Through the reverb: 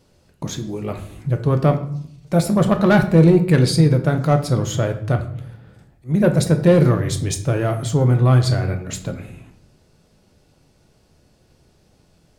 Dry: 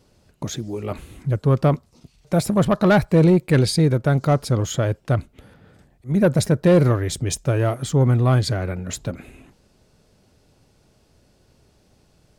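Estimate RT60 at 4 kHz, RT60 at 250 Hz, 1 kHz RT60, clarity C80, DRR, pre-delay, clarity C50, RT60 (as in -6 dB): 0.50 s, 0.90 s, 0.60 s, 14.5 dB, 5.5 dB, 6 ms, 11.5 dB, 0.65 s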